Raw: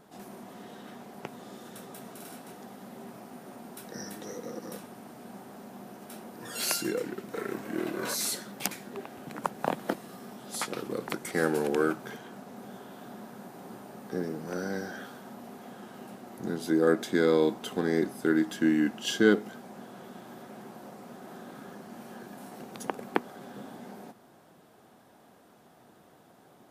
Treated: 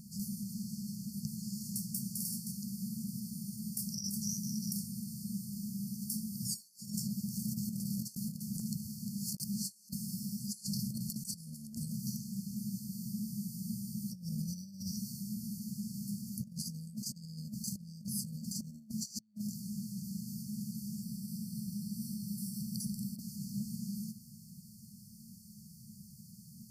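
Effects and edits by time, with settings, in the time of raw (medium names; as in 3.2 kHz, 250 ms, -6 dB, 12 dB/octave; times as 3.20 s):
8.15–9.89 s: reverse
21.03–23.20 s: band-stop 6.7 kHz, Q 6
whole clip: FFT band-reject 230–4300 Hz; dynamic bell 520 Hz, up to -6 dB, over -58 dBFS, Q 0.79; compressor with a negative ratio -46 dBFS, ratio -0.5; trim +7.5 dB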